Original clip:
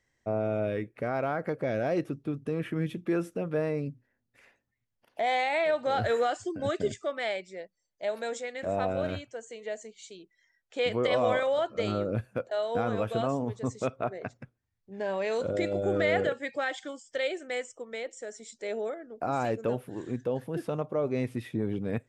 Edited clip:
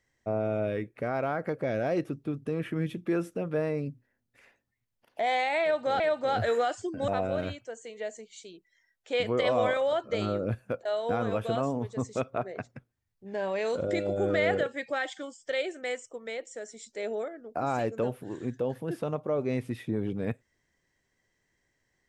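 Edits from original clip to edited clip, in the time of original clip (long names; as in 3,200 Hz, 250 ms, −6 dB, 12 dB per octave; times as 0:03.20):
0:05.62–0:06.00: repeat, 2 plays
0:06.70–0:08.74: remove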